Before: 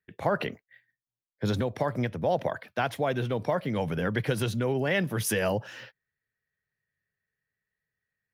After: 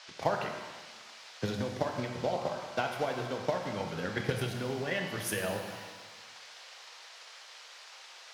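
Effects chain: band noise 490–5600 Hz -45 dBFS; 1.92–3.03 notch 1700 Hz, Q 6.6; on a send: darkening echo 0.119 s, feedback 50%, level -10.5 dB; on the sum: transient shaper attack +8 dB, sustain -1 dB; low shelf 400 Hz -4.5 dB; shimmer reverb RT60 1.2 s, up +7 st, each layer -8 dB, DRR 4 dB; gain -8 dB

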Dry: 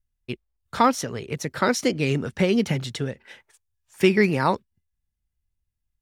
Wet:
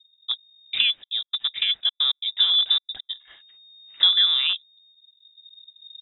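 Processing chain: rattling part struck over -25 dBFS, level -17 dBFS; recorder AGC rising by 12 dB/s; tilt -3.5 dB/oct; 1.02–3.09 step gate "x.x.xxxx" 135 bpm -60 dB; air absorption 250 m; inverted band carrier 3700 Hz; gain -6 dB

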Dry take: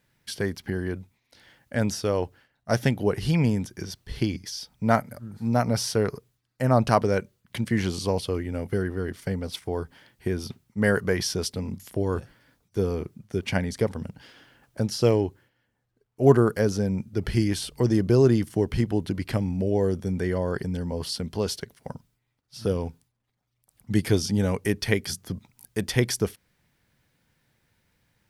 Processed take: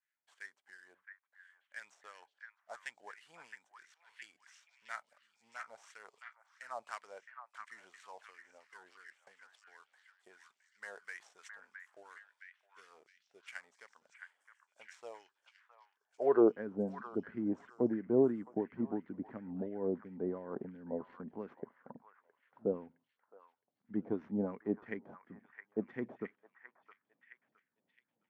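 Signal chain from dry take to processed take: median filter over 9 samples; dynamic EQ 930 Hz, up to +3 dB, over -36 dBFS, Q 1.4; LFO band-pass sine 2.9 Hz 640–1900 Hz; in parallel at -11 dB: backlash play -37.5 dBFS; on the sum: band-pass sweep 8000 Hz -> 240 Hz, 15.14–16.57; on a send: delay with a stepping band-pass 0.665 s, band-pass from 1400 Hz, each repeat 0.7 oct, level -4 dB; on the sum: gain +8 dB

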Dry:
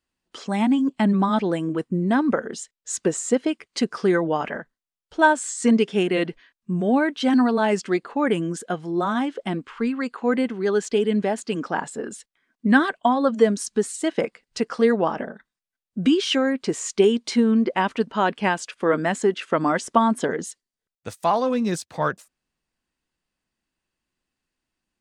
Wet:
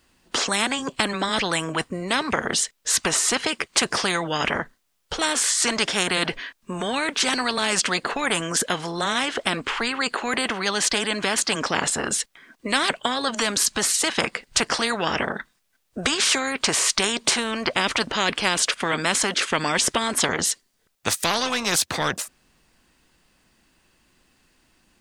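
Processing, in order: spectral compressor 4:1; gain +1.5 dB

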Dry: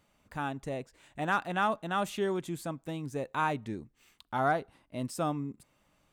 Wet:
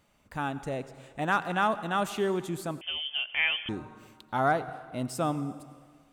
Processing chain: plate-style reverb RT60 1.7 s, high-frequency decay 0.85×, pre-delay 75 ms, DRR 14 dB; 2.81–3.69 inverted band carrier 3300 Hz; gain +2.5 dB

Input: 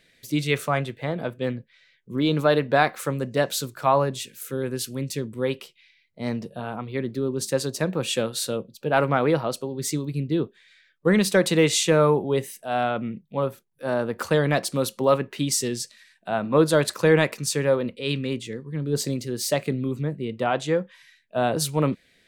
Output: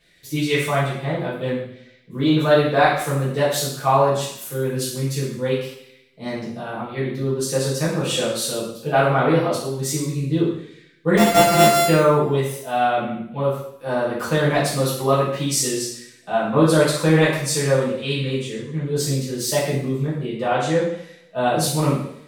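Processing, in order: 11.17–11.88 sample sorter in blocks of 64 samples; two-slope reverb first 0.67 s, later 1.7 s, from -26 dB, DRR -9.5 dB; gain -6 dB

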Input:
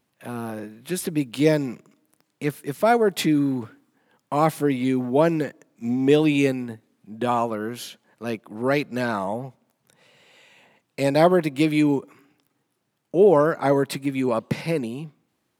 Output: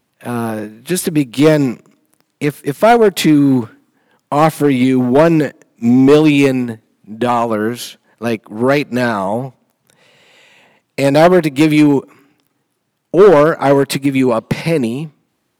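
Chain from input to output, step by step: hard clip -13.5 dBFS, distortion -15 dB; maximiser +18 dB; upward expander 1.5:1, over -23 dBFS; gain -1 dB

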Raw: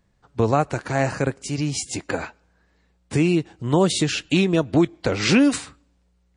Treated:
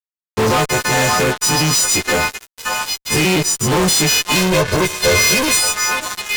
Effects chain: frequency quantiser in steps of 3 st; ripple EQ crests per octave 0.83, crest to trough 6 dB; on a send: delay with a stepping band-pass 0.571 s, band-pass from 1100 Hz, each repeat 1.4 oct, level -4 dB; on the sum: fuzz box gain 35 dB, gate -36 dBFS; 4.35–5.57 comb 1.9 ms, depth 61%

